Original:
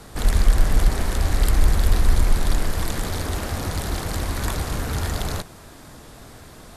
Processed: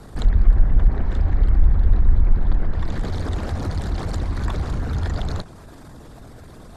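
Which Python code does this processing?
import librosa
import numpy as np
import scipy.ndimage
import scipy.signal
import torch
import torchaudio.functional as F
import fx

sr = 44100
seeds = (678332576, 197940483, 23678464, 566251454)

y = fx.envelope_sharpen(x, sr, power=1.5)
y = fx.env_lowpass_down(y, sr, base_hz=2200.0, full_db=-14.5)
y = y * 10.0 ** (2.0 / 20.0)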